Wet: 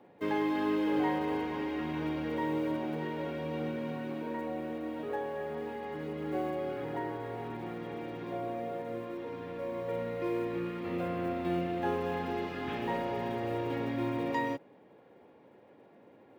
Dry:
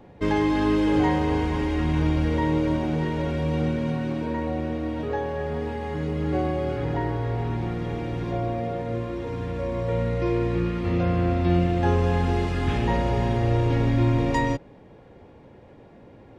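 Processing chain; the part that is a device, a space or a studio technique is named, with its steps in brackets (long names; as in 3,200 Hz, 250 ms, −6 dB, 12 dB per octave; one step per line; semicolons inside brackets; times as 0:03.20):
early digital voice recorder (band-pass filter 240–3,900 Hz; one scale factor per block 7 bits)
level −7 dB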